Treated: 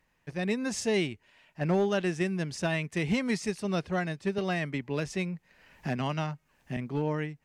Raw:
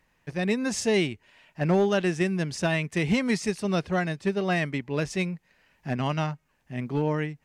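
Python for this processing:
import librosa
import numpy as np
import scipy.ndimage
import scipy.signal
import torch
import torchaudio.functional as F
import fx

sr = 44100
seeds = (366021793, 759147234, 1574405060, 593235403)

y = fx.band_squash(x, sr, depth_pct=70, at=(4.38, 6.77))
y = F.gain(torch.from_numpy(y), -4.0).numpy()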